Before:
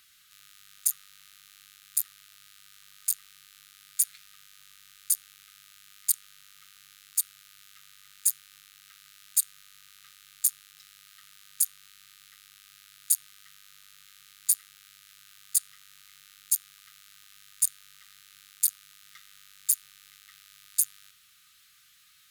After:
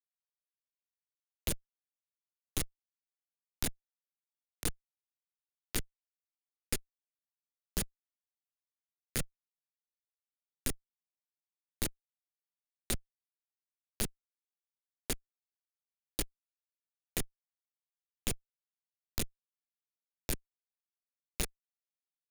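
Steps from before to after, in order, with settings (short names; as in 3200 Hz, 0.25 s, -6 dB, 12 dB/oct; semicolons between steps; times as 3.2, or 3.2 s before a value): whole clip reversed; high shelf 4500 Hz -9.5 dB; Schmitt trigger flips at -28.5 dBFS; bell 970 Hz -10.5 dB 1.1 oct; three-band squash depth 70%; gain +17 dB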